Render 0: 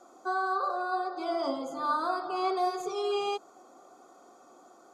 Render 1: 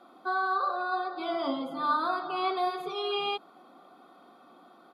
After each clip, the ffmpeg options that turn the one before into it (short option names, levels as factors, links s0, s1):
-af "firequalizer=gain_entry='entry(120,0);entry(170,14);entry(390,2);entry(1100,7);entry(3700,13);entry(6600,-19);entry(10000,3)':delay=0.05:min_phase=1,volume=0.562"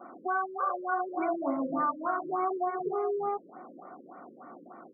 -af "acompressor=threshold=0.02:ratio=6,afftfilt=real='re*lt(b*sr/1024,530*pow(2400/530,0.5+0.5*sin(2*PI*3.4*pts/sr)))':imag='im*lt(b*sr/1024,530*pow(2400/530,0.5+0.5*sin(2*PI*3.4*pts/sr)))':win_size=1024:overlap=0.75,volume=2.51"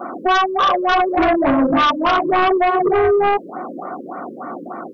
-af "aeval=exprs='0.126*(cos(1*acos(clip(val(0)/0.126,-1,1)))-cos(1*PI/2))+0.0562*(cos(5*acos(clip(val(0)/0.126,-1,1)))-cos(5*PI/2))+0.00178*(cos(6*acos(clip(val(0)/0.126,-1,1)))-cos(6*PI/2))':c=same,volume=2.82"